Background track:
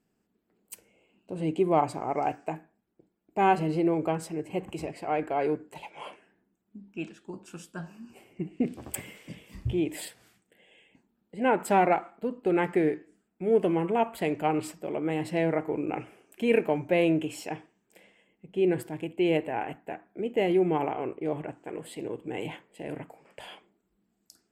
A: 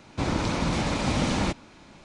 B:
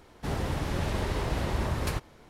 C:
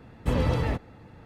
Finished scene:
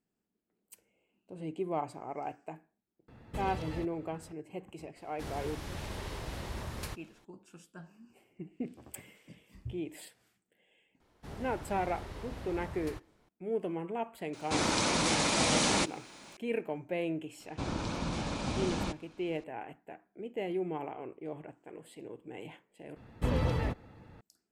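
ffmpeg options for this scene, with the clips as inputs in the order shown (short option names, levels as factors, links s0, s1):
-filter_complex "[3:a]asplit=2[s0][s1];[2:a]asplit=2[s2][s3];[1:a]asplit=2[s4][s5];[0:a]volume=0.299[s6];[s0]acrossover=split=1300|2700[s7][s8][s9];[s7]acompressor=threshold=0.0251:ratio=4[s10];[s8]acompressor=threshold=0.00316:ratio=4[s11];[s9]acompressor=threshold=0.00501:ratio=4[s12];[s10][s11][s12]amix=inputs=3:normalize=0[s13];[s2]highshelf=f=2400:g=6.5[s14];[s4]aemphasis=mode=production:type=bsi[s15];[s5]equalizer=f=2000:w=7.8:g=-7[s16];[s6]asplit=2[s17][s18];[s17]atrim=end=22.964[s19];[s1]atrim=end=1.25,asetpts=PTS-STARTPTS,volume=0.562[s20];[s18]atrim=start=24.206[s21];[s13]atrim=end=1.25,asetpts=PTS-STARTPTS,volume=0.501,afade=t=in:d=0.004:c=hsin,afade=t=out:st=1.246:d=0.004:c=hsin,adelay=3080[s22];[s14]atrim=end=2.29,asetpts=PTS-STARTPTS,volume=0.282,afade=t=in:d=0.004:c=hsin,afade=t=out:st=2.286:d=0.004:c=hsin,adelay=4960[s23];[s3]atrim=end=2.29,asetpts=PTS-STARTPTS,volume=0.2,afade=t=in:d=0.004:c=hsin,afade=t=out:st=2.286:d=0.004:c=hsin,adelay=11000[s24];[s15]atrim=end=2.04,asetpts=PTS-STARTPTS,volume=0.891,afade=t=in:d=0.004:c=hsin,afade=t=out:st=2.036:d=0.004:c=hsin,adelay=14330[s25];[s16]atrim=end=2.04,asetpts=PTS-STARTPTS,volume=0.355,afade=t=in:d=0.004:c=hsin,afade=t=out:st=2.036:d=0.004:c=hsin,adelay=17400[s26];[s19][s20]acrossfade=d=0.004:c1=hsin:c2=hsin[s27];[s27][s21]acrossfade=d=0.004:c1=hsin:c2=hsin[s28];[s28][s22][s23][s24][s25][s26]amix=inputs=6:normalize=0"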